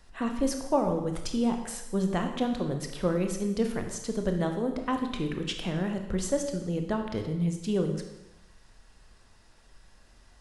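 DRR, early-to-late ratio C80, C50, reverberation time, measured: 4.5 dB, 9.0 dB, 7.0 dB, 0.90 s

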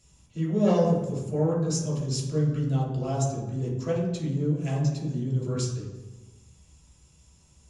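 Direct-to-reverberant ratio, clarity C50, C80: -6.5 dB, 2.5 dB, 5.0 dB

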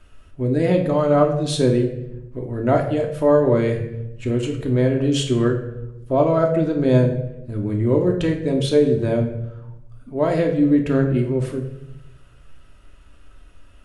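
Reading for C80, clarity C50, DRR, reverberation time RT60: 10.5 dB, 8.0 dB, 1.0 dB, 0.85 s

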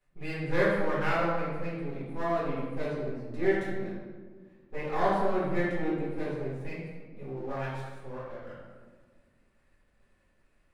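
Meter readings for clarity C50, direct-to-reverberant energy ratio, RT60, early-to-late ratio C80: -1.0 dB, -11.5 dB, 1.5 s, 2.0 dB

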